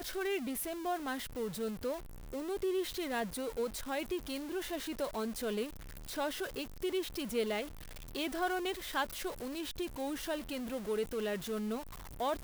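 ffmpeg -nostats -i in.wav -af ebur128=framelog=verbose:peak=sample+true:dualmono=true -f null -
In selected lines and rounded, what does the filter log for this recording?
Integrated loudness:
  I:         -34.4 LUFS
  Threshold: -44.5 LUFS
Loudness range:
  LRA:         1.2 LU
  Threshold: -54.5 LUFS
  LRA low:   -35.1 LUFS
  LRA high:  -33.9 LUFS
Sample peak:
  Peak:      -21.5 dBFS
True peak:
  Peak:      -21.5 dBFS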